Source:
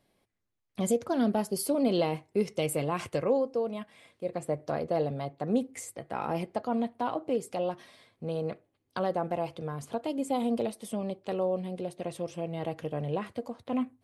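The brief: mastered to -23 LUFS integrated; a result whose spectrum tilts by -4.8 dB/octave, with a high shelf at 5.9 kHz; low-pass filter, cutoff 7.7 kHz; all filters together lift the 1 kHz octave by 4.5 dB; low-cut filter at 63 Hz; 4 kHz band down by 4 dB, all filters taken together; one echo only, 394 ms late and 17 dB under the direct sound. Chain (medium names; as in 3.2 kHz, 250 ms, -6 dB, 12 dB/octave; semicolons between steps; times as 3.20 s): high-pass 63 Hz; low-pass 7.7 kHz; peaking EQ 1 kHz +6.5 dB; peaking EQ 4 kHz -3.5 dB; treble shelf 5.9 kHz -6.5 dB; delay 394 ms -17 dB; trim +7.5 dB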